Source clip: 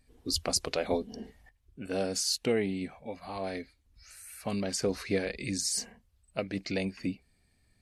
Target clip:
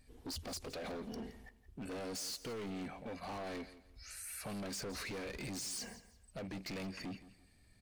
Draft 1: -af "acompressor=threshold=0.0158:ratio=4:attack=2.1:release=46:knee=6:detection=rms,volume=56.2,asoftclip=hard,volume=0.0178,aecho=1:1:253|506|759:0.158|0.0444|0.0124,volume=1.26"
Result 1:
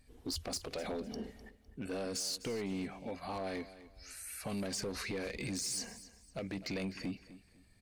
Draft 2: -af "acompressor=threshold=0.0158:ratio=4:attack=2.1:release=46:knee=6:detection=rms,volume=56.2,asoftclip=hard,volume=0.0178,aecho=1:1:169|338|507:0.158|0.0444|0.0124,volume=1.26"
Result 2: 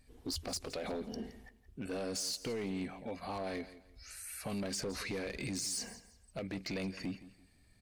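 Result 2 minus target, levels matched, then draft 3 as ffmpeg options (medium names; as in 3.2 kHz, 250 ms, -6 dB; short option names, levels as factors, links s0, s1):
overload inside the chain: distortion -8 dB
-af "acompressor=threshold=0.0158:ratio=4:attack=2.1:release=46:knee=6:detection=rms,volume=133,asoftclip=hard,volume=0.0075,aecho=1:1:169|338|507:0.158|0.0444|0.0124,volume=1.26"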